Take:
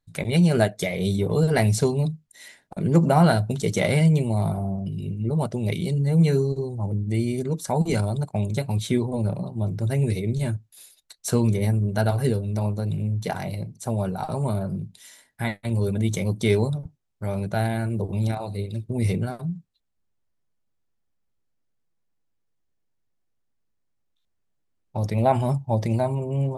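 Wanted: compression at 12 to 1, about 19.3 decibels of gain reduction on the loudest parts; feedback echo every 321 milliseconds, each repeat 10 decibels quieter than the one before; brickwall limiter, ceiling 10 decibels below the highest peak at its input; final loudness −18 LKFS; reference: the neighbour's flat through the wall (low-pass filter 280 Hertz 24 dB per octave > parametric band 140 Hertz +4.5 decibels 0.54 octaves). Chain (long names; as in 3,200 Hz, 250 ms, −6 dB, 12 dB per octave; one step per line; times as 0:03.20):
downward compressor 12 to 1, threshold −33 dBFS
brickwall limiter −28.5 dBFS
low-pass filter 280 Hz 24 dB per octave
parametric band 140 Hz +4.5 dB 0.54 octaves
repeating echo 321 ms, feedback 32%, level −10 dB
level +19.5 dB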